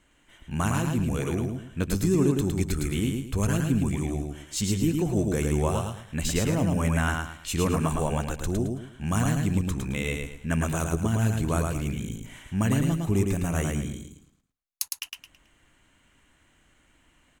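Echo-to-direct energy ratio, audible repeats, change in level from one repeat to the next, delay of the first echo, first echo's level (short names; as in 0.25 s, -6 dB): -3.0 dB, 4, -10.0 dB, 0.109 s, -3.5 dB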